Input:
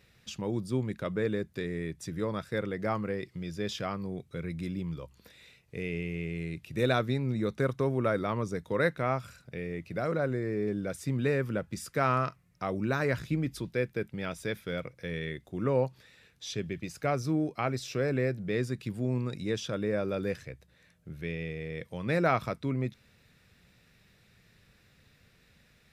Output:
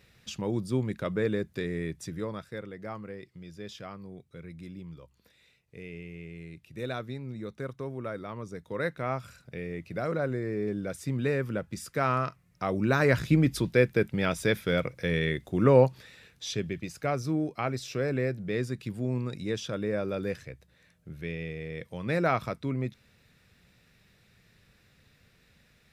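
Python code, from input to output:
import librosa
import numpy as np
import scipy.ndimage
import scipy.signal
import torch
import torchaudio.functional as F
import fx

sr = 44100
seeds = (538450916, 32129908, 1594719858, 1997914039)

y = fx.gain(x, sr, db=fx.line((1.94, 2.0), (2.66, -8.0), (8.31, -8.0), (9.35, 0.0), (12.26, 0.0), (13.37, 8.0), (15.85, 8.0), (17.0, 0.0)))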